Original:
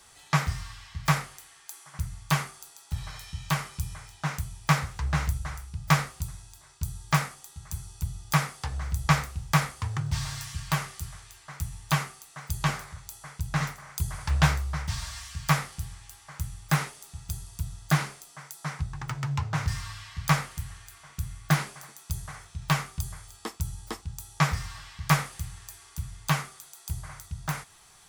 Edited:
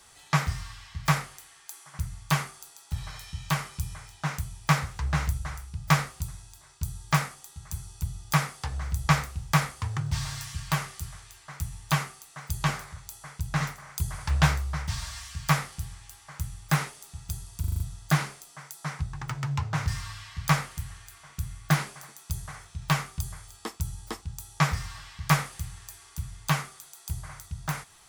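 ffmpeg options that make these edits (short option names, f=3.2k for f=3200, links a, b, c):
-filter_complex "[0:a]asplit=6[a][b][c][d][e][f];[a]atrim=end=17.642[g];[b]atrim=start=17.598:end=17.642[h];[c]atrim=start=17.598:end=17.642[i];[d]atrim=start=17.598:end=17.642[j];[e]atrim=start=17.598:end=17.642[k];[f]atrim=start=17.598[l];[g][h]acrossfade=d=0.004:c1=hsin:c2=hsin[m];[m][i]acrossfade=d=0.004:c1=hsin:c2=hsin[n];[n][j]acrossfade=d=0.004:c1=hsin:c2=hsin[o];[o][k]acrossfade=d=0.004:c1=hsin:c2=hsin[p];[p][l]acrossfade=d=0.004:c1=hsin:c2=hsin"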